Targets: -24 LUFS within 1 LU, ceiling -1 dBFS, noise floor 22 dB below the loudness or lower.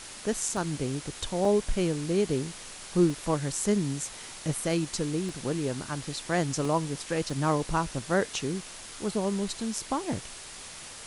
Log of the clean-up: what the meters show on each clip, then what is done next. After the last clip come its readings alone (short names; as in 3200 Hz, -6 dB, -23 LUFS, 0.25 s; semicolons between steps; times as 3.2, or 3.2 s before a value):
dropouts 6; longest dropout 2.3 ms; noise floor -44 dBFS; noise floor target -52 dBFS; loudness -29.5 LUFS; peak -11.5 dBFS; loudness target -24.0 LUFS
-> interpolate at 0.57/1.45/3.1/5.29/6.65/7.3, 2.3 ms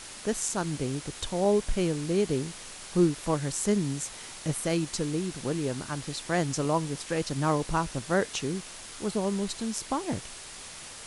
dropouts 0; noise floor -44 dBFS; noise floor target -52 dBFS
-> denoiser 8 dB, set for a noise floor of -44 dBFS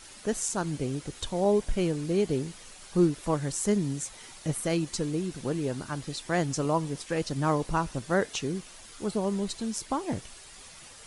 noise floor -49 dBFS; noise floor target -52 dBFS
-> denoiser 6 dB, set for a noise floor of -49 dBFS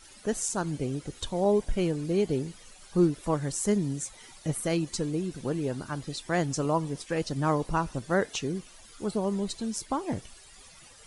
noise floor -52 dBFS; loudness -30.0 LUFS; peak -12.0 dBFS; loudness target -24.0 LUFS
-> gain +6 dB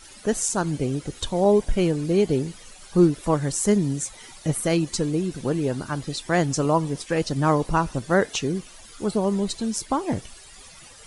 loudness -24.0 LUFS; peak -6.0 dBFS; noise floor -46 dBFS